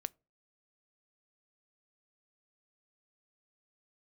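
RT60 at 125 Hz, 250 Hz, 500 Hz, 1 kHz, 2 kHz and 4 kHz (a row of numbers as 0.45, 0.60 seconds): 0.40, 0.40, 0.35, 0.30, 0.20, 0.15 seconds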